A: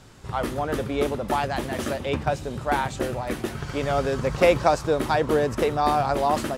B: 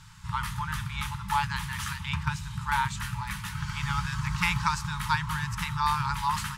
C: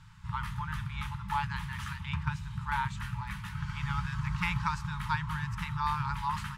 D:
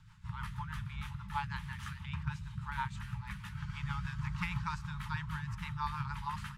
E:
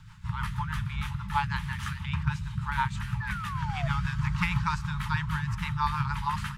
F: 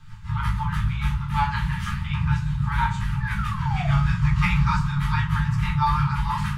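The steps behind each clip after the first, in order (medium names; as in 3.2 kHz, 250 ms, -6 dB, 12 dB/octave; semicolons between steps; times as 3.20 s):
FFT band-reject 200–850 Hz
tone controls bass +3 dB, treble -9 dB; trim -5 dB
rotary cabinet horn 6.3 Hz; trim -3 dB
painted sound fall, 3.20–3.88 s, 640–1800 Hz -47 dBFS; trim +9 dB
simulated room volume 280 m³, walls furnished, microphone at 3.8 m; trim -3 dB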